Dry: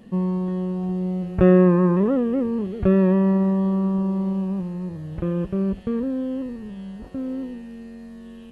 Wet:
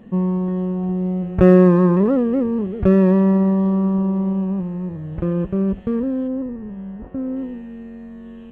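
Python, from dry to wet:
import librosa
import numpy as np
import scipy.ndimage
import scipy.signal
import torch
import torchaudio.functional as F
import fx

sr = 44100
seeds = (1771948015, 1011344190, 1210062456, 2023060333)

y = fx.wiener(x, sr, points=9)
y = fx.lowpass(y, sr, hz=fx.line((6.27, 1500.0), (7.35, 2200.0)), slope=12, at=(6.27, 7.35), fade=0.02)
y = y * librosa.db_to_amplitude(3.5)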